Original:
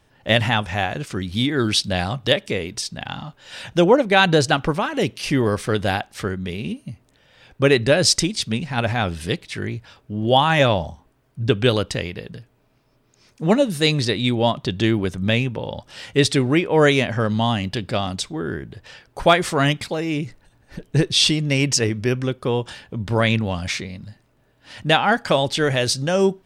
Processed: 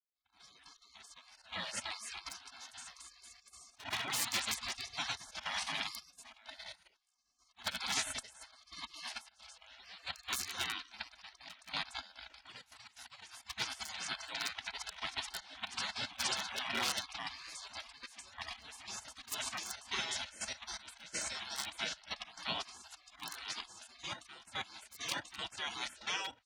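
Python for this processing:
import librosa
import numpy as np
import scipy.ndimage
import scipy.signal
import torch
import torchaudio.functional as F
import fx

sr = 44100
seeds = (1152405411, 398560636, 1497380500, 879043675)

y = fx.fade_in_head(x, sr, length_s=1.53)
y = scipy.signal.sosfilt(scipy.signal.butter(2, 3000.0, 'lowpass', fs=sr, output='sos'), y)
y = fx.echo_pitch(y, sr, ms=380, semitones=1, count=3, db_per_echo=-6.0)
y = 10.0 ** (-8.0 / 20.0) * (np.abs((y / 10.0 ** (-8.0 / 20.0) + 3.0) % 4.0 - 2.0) - 1.0)
y = fx.auto_swell(y, sr, attack_ms=124.0)
y = fx.peak_eq(y, sr, hz=980.0, db=-14.5, octaves=0.66)
y = fx.auto_swell(y, sr, attack_ms=147.0)
y = fx.level_steps(y, sr, step_db=13)
y = scipy.signal.sosfilt(scipy.signal.butter(2, 220.0, 'highpass', fs=sr, output='sos'), y)
y = y + 0.82 * np.pad(y, (int(2.1 * sr / 1000.0), 0))[:len(y)]
y = fx.spec_gate(y, sr, threshold_db=-30, keep='weak')
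y = y * 10.0 ** (9.5 / 20.0)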